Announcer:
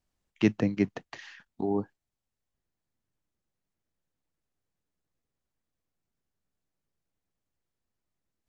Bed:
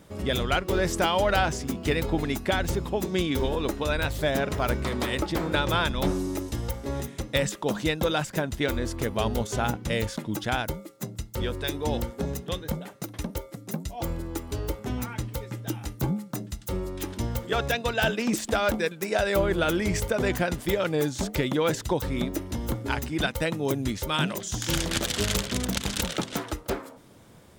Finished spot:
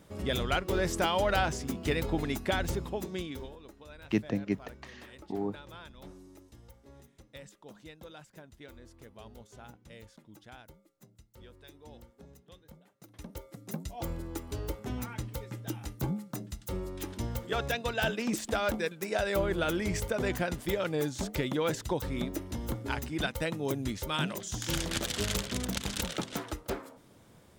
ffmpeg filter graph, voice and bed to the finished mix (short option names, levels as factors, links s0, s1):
-filter_complex "[0:a]adelay=3700,volume=0.562[s0];[1:a]volume=4.73,afade=t=out:st=2.65:d=0.93:silence=0.112202,afade=t=in:st=12.97:d=0.77:silence=0.125893[s1];[s0][s1]amix=inputs=2:normalize=0"